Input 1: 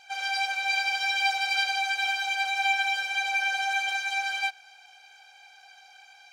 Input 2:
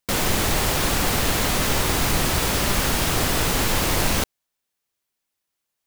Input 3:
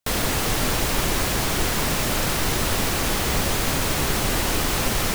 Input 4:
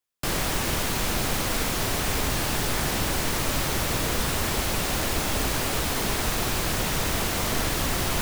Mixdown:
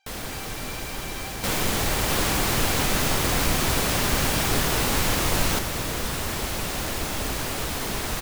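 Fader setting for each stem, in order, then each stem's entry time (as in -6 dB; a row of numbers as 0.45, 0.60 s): -16.0, -3.5, -10.5, -2.5 dB; 0.00, 1.35, 0.00, 1.85 s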